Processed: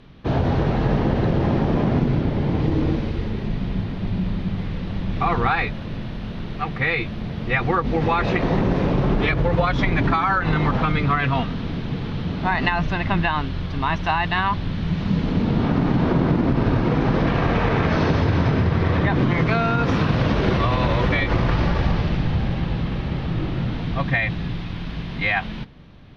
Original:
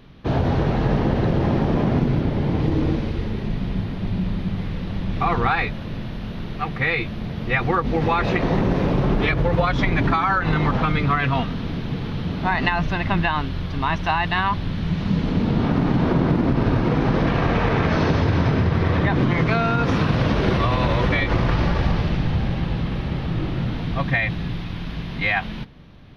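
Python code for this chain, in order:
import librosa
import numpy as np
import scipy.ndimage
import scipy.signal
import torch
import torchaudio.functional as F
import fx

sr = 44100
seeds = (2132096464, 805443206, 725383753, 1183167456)

y = scipy.signal.sosfilt(scipy.signal.bessel(2, 8000.0, 'lowpass', norm='mag', fs=sr, output='sos'), x)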